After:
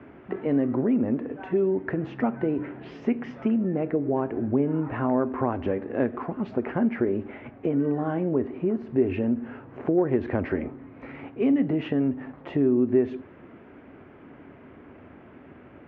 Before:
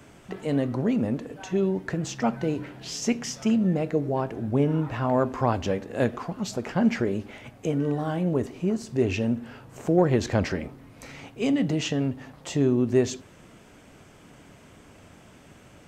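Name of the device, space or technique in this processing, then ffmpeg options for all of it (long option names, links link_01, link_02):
bass amplifier: -af "acompressor=threshold=-26dB:ratio=3,highpass=65,equalizer=frequency=120:width_type=q:width=4:gain=-4,equalizer=frequency=180:width_type=q:width=4:gain=-4,equalizer=frequency=260:width_type=q:width=4:gain=6,equalizer=frequency=370:width_type=q:width=4:gain=6,lowpass=frequency=2200:width=0.5412,lowpass=frequency=2200:width=1.3066,volume=2dB"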